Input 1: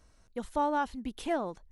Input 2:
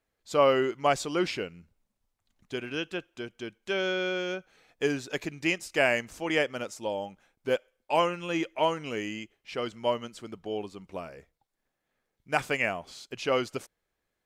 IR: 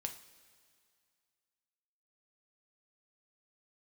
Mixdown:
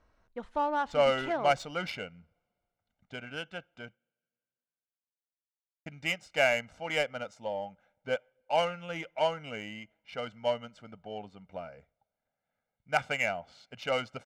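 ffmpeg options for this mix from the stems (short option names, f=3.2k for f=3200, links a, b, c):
-filter_complex "[0:a]lowshelf=f=410:g=-10.5,volume=1.5dB,asplit=2[a][b];[b]volume=-15dB[c];[1:a]highpass=f=100:p=1,highshelf=f=3.2k:g=6.5,aecho=1:1:1.4:0.8,adelay=600,volume=-5.5dB,asplit=3[d][e][f];[d]atrim=end=3.95,asetpts=PTS-STARTPTS,afade=t=out:st=3.946:d=0.004:c=hsin[g];[e]atrim=start=3.95:end=5.86,asetpts=PTS-STARTPTS,volume=0[h];[f]atrim=start=5.86,asetpts=PTS-STARTPTS,afade=t=in:d=0.004:c=hsin[i];[g][h][i]concat=n=3:v=0:a=1,asplit=2[j][k];[k]volume=-21.5dB[l];[2:a]atrim=start_sample=2205[m];[c][l]amix=inputs=2:normalize=0[n];[n][m]afir=irnorm=-1:irlink=0[o];[a][j][o]amix=inputs=3:normalize=0,adynamicsmooth=sensitivity=2.5:basefreq=2.3k"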